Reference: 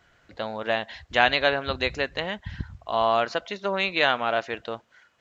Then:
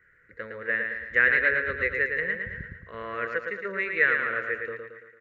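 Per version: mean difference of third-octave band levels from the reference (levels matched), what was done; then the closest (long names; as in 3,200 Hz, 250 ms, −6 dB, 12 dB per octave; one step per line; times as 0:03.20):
8.0 dB: drawn EQ curve 180 Hz 0 dB, 290 Hz −5 dB, 490 Hz +8 dB, 750 Hz −26 dB, 1,200 Hz −1 dB, 1,900 Hz +15 dB, 3,200 Hz −18 dB, 5,900 Hz −16 dB, 9,300 Hz −3 dB
repeating echo 112 ms, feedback 50%, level −5 dB
level −7 dB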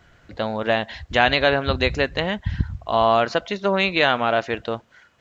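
1.5 dB: low-shelf EQ 300 Hz +8 dB
in parallel at −1.5 dB: brickwall limiter −12.5 dBFS, peak gain reduction 10 dB
on the sum: level −1 dB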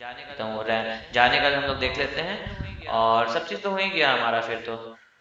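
4.0 dB: backwards echo 1,150 ms −19 dB
reverb whose tail is shaped and stops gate 210 ms flat, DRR 4 dB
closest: second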